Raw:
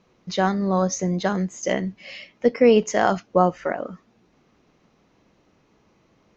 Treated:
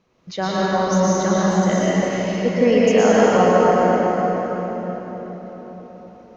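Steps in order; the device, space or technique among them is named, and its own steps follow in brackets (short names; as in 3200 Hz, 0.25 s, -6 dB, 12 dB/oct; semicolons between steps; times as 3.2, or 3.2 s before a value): cathedral (reverb RT60 4.8 s, pre-delay 0.101 s, DRR -8.5 dB); gain -3.5 dB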